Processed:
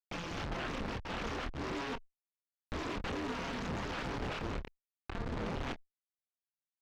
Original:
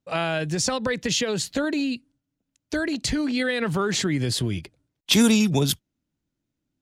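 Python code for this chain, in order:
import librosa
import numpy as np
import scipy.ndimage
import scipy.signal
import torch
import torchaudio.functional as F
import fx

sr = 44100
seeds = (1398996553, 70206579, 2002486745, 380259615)

y = fx.bit_reversed(x, sr, seeds[0], block=64)
y = scipy.signal.sosfilt(scipy.signal.butter(2, 980.0, 'highpass', fs=sr, output='sos'), y)
y = fx.high_shelf(y, sr, hz=2000.0, db=-7.5)
y = fx.over_compress(y, sr, threshold_db=-34.0, ratio=-1.0)
y = fx.schmitt(y, sr, flips_db=-32.0)
y = fx.chorus_voices(y, sr, voices=4, hz=0.47, base_ms=26, depth_ms=2.5, mix_pct=35)
y = fx.tube_stage(y, sr, drive_db=38.0, bias=0.6)
y = fx.air_absorb(y, sr, metres=210.0)
y = fx.doppler_dist(y, sr, depth_ms=0.85)
y = y * 10.0 ** (7.0 / 20.0)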